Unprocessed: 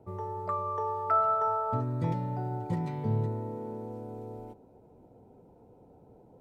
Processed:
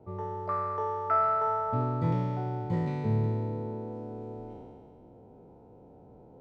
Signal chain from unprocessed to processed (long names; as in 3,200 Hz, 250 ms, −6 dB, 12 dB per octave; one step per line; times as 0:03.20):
peak hold with a decay on every bin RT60 2.24 s
high-frequency loss of the air 120 metres